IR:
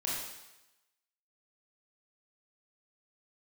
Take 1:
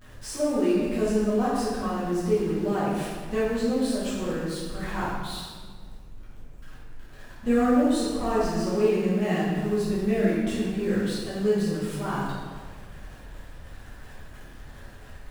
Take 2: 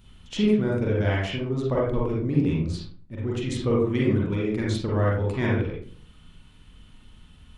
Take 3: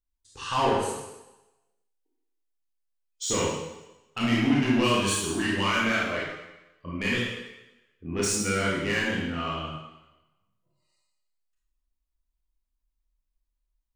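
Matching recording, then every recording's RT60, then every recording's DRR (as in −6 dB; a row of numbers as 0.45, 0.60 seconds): 3; 1.6, 0.50, 0.95 seconds; −11.0, −5.0, −6.0 decibels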